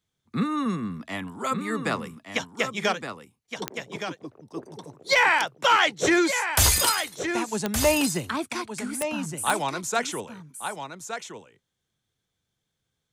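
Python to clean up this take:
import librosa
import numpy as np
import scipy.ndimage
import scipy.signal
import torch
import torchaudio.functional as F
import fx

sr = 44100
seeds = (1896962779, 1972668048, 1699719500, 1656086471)

y = fx.fix_declip(x, sr, threshold_db=-11.0)
y = fx.fix_declick_ar(y, sr, threshold=10.0)
y = fx.fix_echo_inverse(y, sr, delay_ms=1168, level_db=-8.0)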